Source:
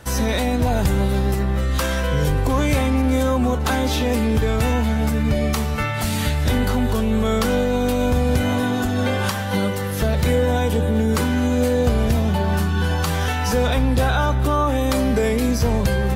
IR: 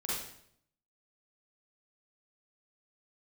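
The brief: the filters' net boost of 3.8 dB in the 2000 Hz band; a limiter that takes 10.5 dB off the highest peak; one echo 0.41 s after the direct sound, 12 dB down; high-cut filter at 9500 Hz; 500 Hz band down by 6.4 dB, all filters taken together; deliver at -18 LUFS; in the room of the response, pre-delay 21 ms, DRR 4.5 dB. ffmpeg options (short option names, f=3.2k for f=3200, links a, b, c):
-filter_complex "[0:a]lowpass=9.5k,equalizer=f=500:t=o:g=-7.5,equalizer=f=2k:t=o:g=5.5,alimiter=limit=-17dB:level=0:latency=1,aecho=1:1:410:0.251,asplit=2[a][b];[1:a]atrim=start_sample=2205,adelay=21[c];[b][c]afir=irnorm=-1:irlink=0,volume=-8.5dB[d];[a][d]amix=inputs=2:normalize=0,volume=6dB"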